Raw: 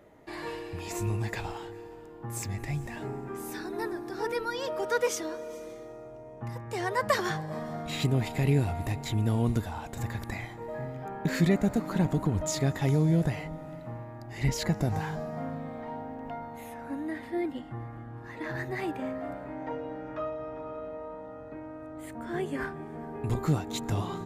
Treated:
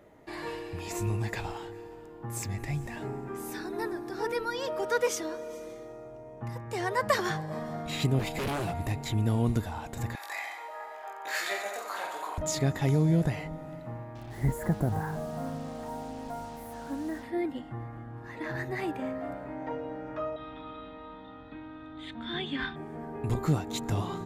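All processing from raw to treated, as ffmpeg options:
ffmpeg -i in.wav -filter_complex "[0:a]asettb=1/sr,asplit=3[link_01][link_02][link_03];[link_01]atrim=end=8.194[link_04];[link_02]atrim=start=8.19:end=8.74,asetpts=PTS-STARTPTS,afade=type=in:duration=0.004:curve=qsin,afade=type=out:start_time=0.546:duration=0.004:curve=qsin,bandreject=frequency=1900:width=14,aecho=1:1:6:0.9,atrim=end_sample=24255,aeval=exprs='0.0501*(abs(mod(val(0)/0.0501+3,4)-2)-1)':channel_layout=same[link_05];[link_03]atrim=start=8.736[link_06];[link_04][link_05]acrossfade=duration=0.004:curve1=hsin:curve2=qsin[link_07];[link_07][link_06]acrossfade=duration=0.004:curve1=qsin:curve2=hsin,asettb=1/sr,asplit=3[link_08][link_09][link_10];[link_08]atrim=end=10.154[link_11];[link_09]atrim=start=10.15:end=12.38,asetpts=PTS-STARTPTS,afade=type=in:duration=0.004:curve=qsin,afade=type=out:start_time=2.226:duration=0.004:curve=qsin,highpass=frequency=660:width=0.5412,highpass=frequency=660:width=1.3066,aecho=1:1:20|48|87.2|142.1|218.9:0.794|0.631|0.501|0.398|0.316,atrim=end_sample=98343[link_12];[link_10]atrim=start=12.376[link_13];[link_11][link_12]acrossfade=duration=0.004:curve1=hsin:curve2=qsin[link_14];[link_14][link_13]acrossfade=duration=0.004:curve1=qsin:curve2=hsin,asettb=1/sr,asplit=3[link_15][link_16][link_17];[link_15]atrim=end=14.154[link_18];[link_16]atrim=start=14.15:end=17.23,asetpts=PTS-STARTPTS,afade=type=in:duration=0.004:curve=qsin,afade=type=out:start_time=3.076:duration=0.004:curve=qsin,aeval=exprs='val(0)+0.00224*(sin(2*PI*50*n/s)+sin(2*PI*2*50*n/s)/2+sin(2*PI*3*50*n/s)/3+sin(2*PI*4*50*n/s)/4+sin(2*PI*5*50*n/s)/5)':channel_layout=same,asuperstop=centerf=4000:order=8:qfactor=0.61,acrusher=bits=7:mix=0:aa=0.5[link_19];[link_17]atrim=start=17.226[link_20];[link_18][link_19]acrossfade=duration=0.004:curve1=hsin:curve2=qsin[link_21];[link_21][link_20]acrossfade=duration=0.004:curve1=qsin:curve2=hsin,asettb=1/sr,asplit=3[link_22][link_23][link_24];[link_22]atrim=end=20.364[link_25];[link_23]atrim=start=20.36:end=22.76,asetpts=PTS-STARTPTS,afade=type=in:duration=0.004:curve=qsin,afade=type=out:start_time=2.396:duration=0.004:curve=qsin,lowpass=frequency=3600:width_type=q:width=14,equalizer=frequency=540:width_type=o:width=0.73:gain=-12,aecho=1:1:3.9:0.31,atrim=end_sample=105840[link_26];[link_24]atrim=start=22.756[link_27];[link_25][link_26]acrossfade=duration=0.004:curve1=hsin:curve2=qsin[link_28];[link_28][link_27]acrossfade=duration=0.004:curve1=qsin:curve2=hsin" out.wav

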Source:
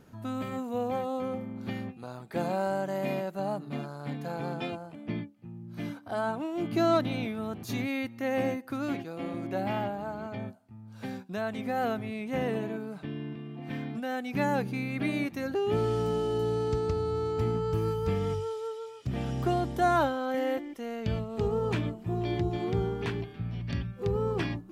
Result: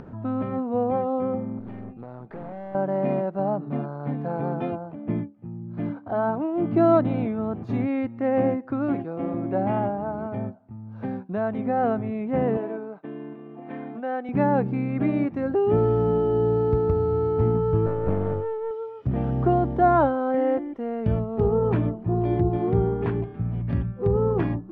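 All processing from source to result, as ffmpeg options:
ffmpeg -i in.wav -filter_complex "[0:a]asettb=1/sr,asplit=3[link_01][link_02][link_03];[link_01]atrim=end=1.594[link_04];[link_02]atrim=start=1.59:end=2.75,asetpts=PTS-STARTPTS,afade=type=in:duration=0.004:curve=qsin,afade=type=out:start_time=1.156:duration=0.004:curve=qsin,aeval=exprs='(tanh(63.1*val(0)+0.55)-tanh(0.55))/63.1':channel_layout=same,acompressor=threshold=-40dB:ratio=4:attack=3.2:release=140:knee=1:detection=peak[link_05];[link_03]atrim=start=2.746[link_06];[link_04][link_05]acrossfade=duration=0.004:curve1=hsin:curve2=qsin[link_07];[link_07][link_06]acrossfade=duration=0.004:curve1=qsin:curve2=hsin,asettb=1/sr,asplit=3[link_08][link_09][link_10];[link_08]atrim=end=12.574[link_11];[link_09]atrim=start=12.57:end=14.29,asetpts=PTS-STARTPTS,afade=type=in:duration=0.004:curve=qsin,afade=type=out:start_time=1.716:duration=0.004:curve=qsin,agate=range=-33dB:threshold=-38dB:ratio=3:release=100:detection=peak,highpass=350,lowpass=5500[link_12];[link_10]atrim=start=14.286[link_13];[link_11][link_12]acrossfade=duration=0.004:curve1=hsin:curve2=qsin[link_14];[link_14][link_13]acrossfade=duration=0.004:curve1=qsin:curve2=hsin,asettb=1/sr,asplit=3[link_15][link_16][link_17];[link_15]atrim=end=17.864[link_18];[link_16]atrim=start=17.86:end=18.71,asetpts=PTS-STARTPTS,afade=type=in:duration=0.004:curve=qsin,afade=type=out:start_time=0.846:duration=0.004:curve=qsin,adynamicsmooth=sensitivity=6:basefreq=3800,aeval=exprs='clip(val(0),-1,0.0119)':channel_layout=same[link_19];[link_17]atrim=start=18.706[link_20];[link_18][link_19]acrossfade=duration=0.004:curve1=hsin:curve2=qsin[link_21];[link_21][link_20]acrossfade=duration=0.004:curve1=qsin:curve2=hsin,lowpass=1100,acompressor=mode=upward:threshold=-42dB:ratio=2.5,volume=7.5dB" out.wav

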